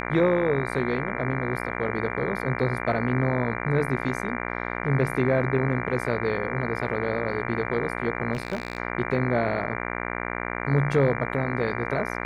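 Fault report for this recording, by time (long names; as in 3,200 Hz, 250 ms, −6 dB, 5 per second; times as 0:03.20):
mains buzz 60 Hz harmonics 39 −31 dBFS
0:08.33–0:08.78: clipping −21.5 dBFS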